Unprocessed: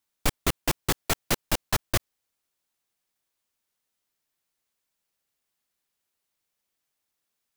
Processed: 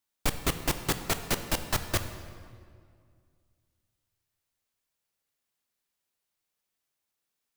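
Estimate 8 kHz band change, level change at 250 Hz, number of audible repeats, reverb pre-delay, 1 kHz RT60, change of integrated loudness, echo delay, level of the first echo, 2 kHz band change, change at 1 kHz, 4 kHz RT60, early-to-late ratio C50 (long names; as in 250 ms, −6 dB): −2.5 dB, −2.0 dB, no echo audible, 15 ms, 2.0 s, −2.5 dB, no echo audible, no echo audible, −2.5 dB, −2.5 dB, 1.4 s, 9.5 dB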